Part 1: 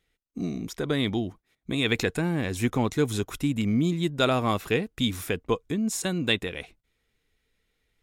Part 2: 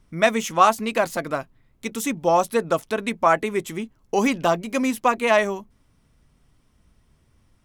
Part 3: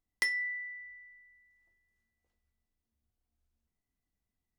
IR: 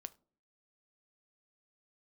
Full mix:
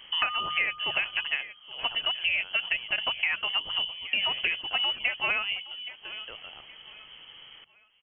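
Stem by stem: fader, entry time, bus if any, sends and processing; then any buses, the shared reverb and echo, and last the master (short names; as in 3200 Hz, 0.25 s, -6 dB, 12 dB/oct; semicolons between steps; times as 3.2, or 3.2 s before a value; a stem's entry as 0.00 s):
-10.0 dB, 0.00 s, send -4 dB, no echo send, limiter -15.5 dBFS, peak gain reduction 6.5 dB; de-esser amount 65%; auto duck -11 dB, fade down 1.75 s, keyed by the second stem
-4.5 dB, 0.00 s, no send, echo send -21 dB, three-band squash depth 70%
+2.5 dB, 0.00 s, no send, no echo send, dry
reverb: on, pre-delay 7 ms
echo: feedback echo 0.819 s, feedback 34%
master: inverted band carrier 3200 Hz; notches 50/100/150/200 Hz; compressor 4:1, threshold -24 dBFS, peak gain reduction 7.5 dB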